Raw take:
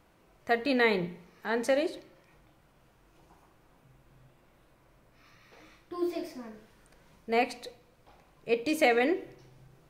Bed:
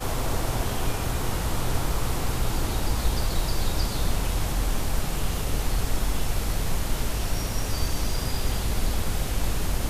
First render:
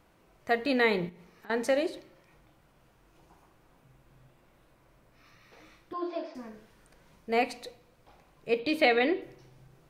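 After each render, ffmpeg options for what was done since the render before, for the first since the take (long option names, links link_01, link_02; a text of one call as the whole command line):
ffmpeg -i in.wav -filter_complex "[0:a]asettb=1/sr,asplit=3[link_01][link_02][link_03];[link_01]atrim=end=1.094[link_04];[link_02]atrim=start=1.09:end=1.5,asetpts=PTS-STARTPTS,afade=type=in:duration=0.004:curve=qsin,afade=type=out:start_time=0.406:duration=0.004:curve=qsin,acompressor=threshold=-48dB:ratio=6:attack=3.2:release=140:knee=1:detection=peak[link_05];[link_03]atrim=start=1.496[link_06];[link_04][link_05]acrossfade=duration=0.004:curve1=hsin:curve2=qsin[link_07];[link_07][link_06]acrossfade=duration=0.004:curve1=qsin:curve2=hsin,asettb=1/sr,asplit=3[link_08][link_09][link_10];[link_08]atrim=end=5.934[link_11];[link_09]atrim=start=5.93:end=6.35,asetpts=PTS-STARTPTS,afade=type=in:duration=0.004:curve=qsin,afade=type=out:start_time=0.416:duration=0.004:curve=qsin,highpass=frequency=250:width=0.5412,highpass=frequency=250:width=1.3066,equalizer=frequency=390:width_type=q:width=4:gain=-9,equalizer=frequency=620:width_type=q:width=4:gain=6,equalizer=frequency=1000:width_type=q:width=4:gain=7,equalizer=frequency=1500:width_type=q:width=4:gain=5,equalizer=frequency=2100:width_type=q:width=4:gain=-7,lowpass=frequency=4300:width=0.5412,lowpass=frequency=4300:width=1.3066[link_12];[link_10]atrim=start=6.346[link_13];[link_11][link_12]acrossfade=duration=0.004:curve1=hsin:curve2=qsin[link_14];[link_14][link_13]acrossfade=duration=0.004:curve1=qsin:curve2=hsin,asettb=1/sr,asplit=3[link_15][link_16][link_17];[link_15]atrim=end=8.594[link_18];[link_16]atrim=start=8.59:end=9.22,asetpts=PTS-STARTPTS,afade=type=in:duration=0.004:curve=qsin,afade=type=out:start_time=0.626:duration=0.004:curve=qsin,highshelf=frequency=5100:width_type=q:width=3:gain=-8[link_19];[link_17]atrim=start=9.216[link_20];[link_18][link_19]acrossfade=duration=0.004:curve1=hsin:curve2=qsin[link_21];[link_21][link_20]acrossfade=duration=0.004:curve1=qsin:curve2=hsin" out.wav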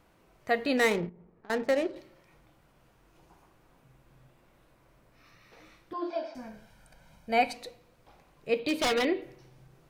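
ffmpeg -i in.wav -filter_complex "[0:a]asettb=1/sr,asplit=3[link_01][link_02][link_03];[link_01]atrim=end=0.774[link_04];[link_02]atrim=start=0.77:end=1.96,asetpts=PTS-STARTPTS,afade=type=in:duration=0.004:curve=qsin,afade=type=out:start_time=1.186:duration=0.004:curve=qsin,adynamicsmooth=sensitivity=7.5:basefreq=610[link_05];[link_03]atrim=start=1.956[link_06];[link_04][link_05]acrossfade=duration=0.004:curve1=hsin:curve2=qsin[link_07];[link_07][link_06]acrossfade=duration=0.004:curve1=qsin:curve2=hsin,asettb=1/sr,asplit=3[link_08][link_09][link_10];[link_08]atrim=end=6.104[link_11];[link_09]atrim=start=6.1:end=7.54,asetpts=PTS-STARTPTS,afade=type=in:duration=0.004:curve=qsin,afade=type=out:start_time=1.436:duration=0.004:curve=qsin,aecho=1:1:1.3:0.65,atrim=end_sample=63504[link_12];[link_10]atrim=start=7.536[link_13];[link_11][link_12]acrossfade=duration=0.004:curve1=hsin:curve2=qsin[link_14];[link_14][link_13]acrossfade=duration=0.004:curve1=qsin:curve2=hsin,asettb=1/sr,asplit=3[link_15][link_16][link_17];[link_15]atrim=end=8.604[link_18];[link_16]atrim=start=8.6:end=9.05,asetpts=PTS-STARTPTS,afade=type=in:duration=0.004:curve=qsin,afade=type=out:start_time=0.446:duration=0.004:curve=qsin,aeval=exprs='0.0891*(abs(mod(val(0)/0.0891+3,4)-2)-1)':channel_layout=same[link_19];[link_17]atrim=start=9.046[link_20];[link_18][link_19]acrossfade=duration=0.004:curve1=hsin:curve2=qsin[link_21];[link_21][link_20]acrossfade=duration=0.004:curve1=qsin:curve2=hsin" out.wav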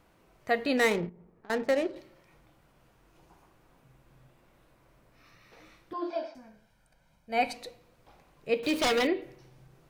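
ffmpeg -i in.wav -filter_complex "[0:a]asettb=1/sr,asplit=3[link_01][link_02][link_03];[link_01]atrim=end=8.634[link_04];[link_02]atrim=start=8.63:end=9.07,asetpts=PTS-STARTPTS,afade=type=in:duration=0.004:curve=qsin,afade=type=out:start_time=0.436:duration=0.004:curve=qsin,aeval=exprs='val(0)+0.5*0.0133*sgn(val(0))':channel_layout=same[link_05];[link_03]atrim=start=9.066[link_06];[link_04][link_05]acrossfade=duration=0.004:curve1=hsin:curve2=qsin[link_07];[link_07][link_06]acrossfade=duration=0.004:curve1=qsin:curve2=hsin,asplit=3[link_08][link_09][link_10];[link_08]atrim=end=6.4,asetpts=PTS-STARTPTS,afade=type=out:start_time=6.24:duration=0.16:silence=0.354813[link_11];[link_09]atrim=start=6.4:end=7.29,asetpts=PTS-STARTPTS,volume=-9dB[link_12];[link_10]atrim=start=7.29,asetpts=PTS-STARTPTS,afade=type=in:duration=0.16:silence=0.354813[link_13];[link_11][link_12][link_13]concat=n=3:v=0:a=1" out.wav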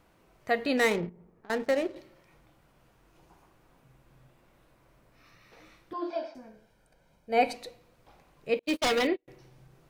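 ffmpeg -i in.wav -filter_complex "[0:a]asettb=1/sr,asplit=3[link_01][link_02][link_03];[link_01]atrim=end=1.544[link_04];[link_02]atrim=start=1.54:end=1.95,asetpts=PTS-STARTPTS,afade=type=in:duration=0.004:curve=qsin,afade=type=out:start_time=0.406:duration=0.004:curve=qsin,aeval=exprs='sgn(val(0))*max(abs(val(0))-0.00237,0)':channel_layout=same[link_05];[link_03]atrim=start=1.946[link_06];[link_04][link_05]acrossfade=duration=0.004:curve1=hsin:curve2=qsin[link_07];[link_07][link_06]acrossfade=duration=0.004:curve1=qsin:curve2=hsin,asettb=1/sr,asplit=3[link_08][link_09][link_10];[link_08]atrim=end=6.354[link_11];[link_09]atrim=start=6.35:end=7.56,asetpts=PTS-STARTPTS,afade=type=in:duration=0.004:curve=qsin,afade=type=out:start_time=1.206:duration=0.004:curve=qsin,equalizer=frequency=410:width_type=o:width=0.91:gain=10[link_12];[link_10]atrim=start=7.556[link_13];[link_11][link_12]acrossfade=duration=0.004:curve1=hsin:curve2=qsin[link_14];[link_14][link_13]acrossfade=duration=0.004:curve1=qsin:curve2=hsin,asettb=1/sr,asplit=3[link_15][link_16][link_17];[link_15]atrim=end=8.594[link_18];[link_16]atrim=start=8.59:end=9.28,asetpts=PTS-STARTPTS,afade=type=in:duration=0.004:curve=qsin,afade=type=out:start_time=0.686:duration=0.004:curve=qsin,agate=range=-37dB:threshold=-29dB:ratio=16:release=100:detection=peak[link_19];[link_17]atrim=start=9.276[link_20];[link_18][link_19]acrossfade=duration=0.004:curve1=hsin:curve2=qsin[link_21];[link_21][link_20]acrossfade=duration=0.004:curve1=qsin:curve2=hsin" out.wav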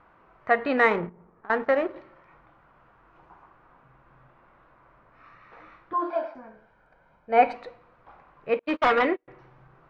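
ffmpeg -i in.wav -af "lowpass=2300,equalizer=frequency=1200:width_type=o:width=1.5:gain=13" out.wav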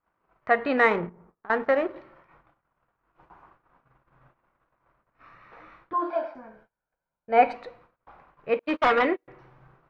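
ffmpeg -i in.wav -af "agate=range=-27dB:threshold=-55dB:ratio=16:detection=peak" out.wav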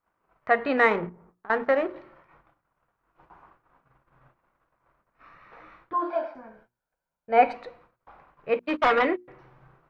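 ffmpeg -i in.wav -af "bandreject=frequency=60:width_type=h:width=6,bandreject=frequency=120:width_type=h:width=6,bandreject=frequency=180:width_type=h:width=6,bandreject=frequency=240:width_type=h:width=6,bandreject=frequency=300:width_type=h:width=6,bandreject=frequency=360:width_type=h:width=6" out.wav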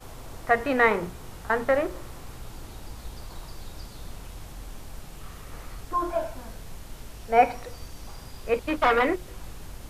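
ffmpeg -i in.wav -i bed.wav -filter_complex "[1:a]volume=-15dB[link_01];[0:a][link_01]amix=inputs=2:normalize=0" out.wav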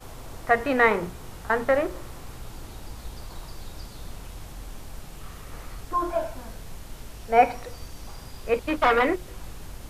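ffmpeg -i in.wav -af "volume=1dB" out.wav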